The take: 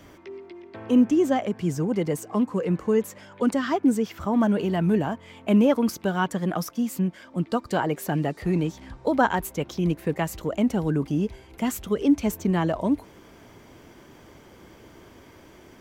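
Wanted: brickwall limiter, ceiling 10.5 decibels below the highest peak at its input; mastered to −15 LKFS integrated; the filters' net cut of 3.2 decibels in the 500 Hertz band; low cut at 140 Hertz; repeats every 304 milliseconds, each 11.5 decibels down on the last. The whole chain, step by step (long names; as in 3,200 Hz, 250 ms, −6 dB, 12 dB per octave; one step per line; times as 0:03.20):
high-pass filter 140 Hz
parametric band 500 Hz −4 dB
brickwall limiter −20 dBFS
repeating echo 304 ms, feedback 27%, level −11.5 dB
level +14.5 dB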